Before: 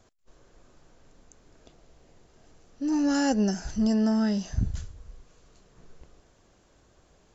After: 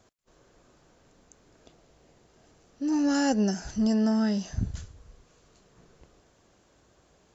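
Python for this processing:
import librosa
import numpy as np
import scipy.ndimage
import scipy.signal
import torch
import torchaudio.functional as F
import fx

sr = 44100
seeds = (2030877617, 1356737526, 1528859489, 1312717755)

y = fx.highpass(x, sr, hz=76.0, slope=6)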